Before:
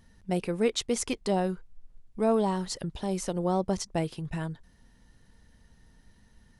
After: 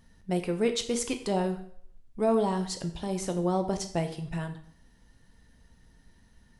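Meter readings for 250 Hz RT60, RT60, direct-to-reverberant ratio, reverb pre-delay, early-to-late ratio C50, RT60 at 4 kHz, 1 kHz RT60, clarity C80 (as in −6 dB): 0.60 s, 0.65 s, 6.5 dB, 4 ms, 11.0 dB, 0.55 s, 0.60 s, 14.0 dB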